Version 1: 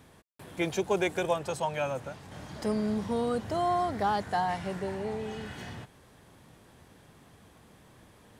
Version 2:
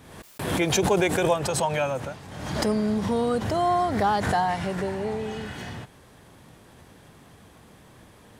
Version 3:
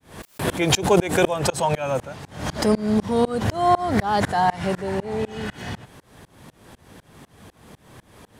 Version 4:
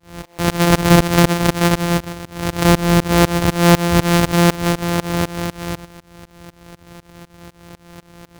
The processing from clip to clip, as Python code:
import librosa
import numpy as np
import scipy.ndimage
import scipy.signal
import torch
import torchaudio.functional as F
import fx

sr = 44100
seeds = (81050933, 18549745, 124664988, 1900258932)

y1 = fx.pre_swell(x, sr, db_per_s=49.0)
y1 = y1 * 10.0 ** (5.0 / 20.0)
y2 = fx.tremolo_shape(y1, sr, shape='saw_up', hz=4.0, depth_pct=100)
y2 = y2 * 10.0 ** (8.0 / 20.0)
y3 = np.r_[np.sort(y2[:len(y2) // 256 * 256].reshape(-1, 256), axis=1).ravel(), y2[len(y2) // 256 * 256:]]
y3 = np.clip(y3, -10.0 ** (-9.0 / 20.0), 10.0 ** (-9.0 / 20.0))
y3 = y3 * 10.0 ** (6.5 / 20.0)